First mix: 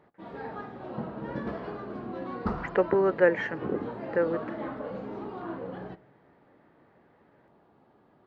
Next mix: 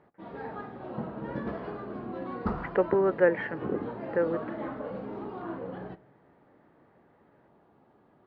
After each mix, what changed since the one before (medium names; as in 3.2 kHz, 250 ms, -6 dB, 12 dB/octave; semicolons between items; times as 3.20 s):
speech: add distance through air 190 m; master: add distance through air 120 m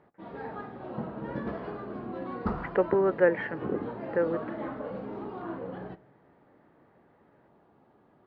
no change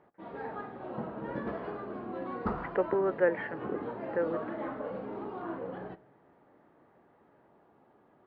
speech -3.5 dB; master: add tone controls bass -5 dB, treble -7 dB